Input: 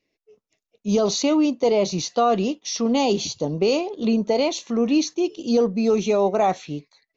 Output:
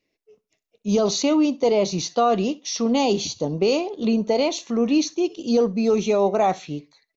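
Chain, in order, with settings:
repeating echo 65 ms, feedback 22%, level −22 dB

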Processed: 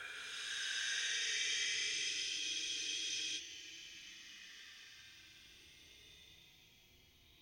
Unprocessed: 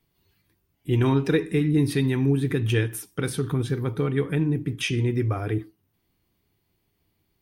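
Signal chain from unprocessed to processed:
echo through a band-pass that steps 676 ms, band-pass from 720 Hz, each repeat 1.4 octaves, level −1 dB
extreme stretch with random phases 30×, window 0.05 s, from 0:06.82
frozen spectrum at 0:02.42, 0.95 s

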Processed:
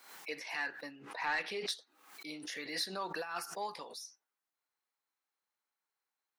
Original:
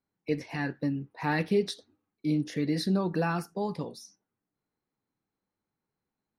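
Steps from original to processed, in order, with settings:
high-pass filter 1,000 Hz 12 dB per octave
0:03.01–0:03.76: compressor whose output falls as the input rises −38 dBFS, ratio −0.5
soft clipping −26.5 dBFS, distortion −19 dB
0:00.91–0:01.69: high-frequency loss of the air 53 metres
background raised ahead of every attack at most 81 dB per second
level +1 dB

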